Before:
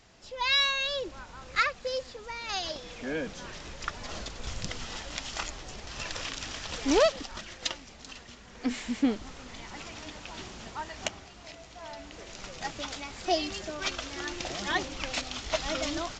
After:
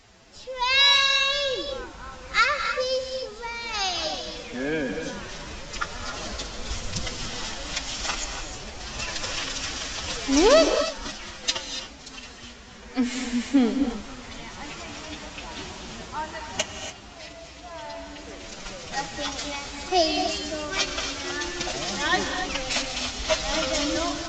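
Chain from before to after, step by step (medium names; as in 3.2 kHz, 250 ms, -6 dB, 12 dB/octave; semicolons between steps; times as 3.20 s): dynamic bell 6 kHz, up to +3 dB, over -45 dBFS, Q 1.1; time stretch by phase-locked vocoder 1.5×; gated-style reverb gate 310 ms rising, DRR 6 dB; trim +5 dB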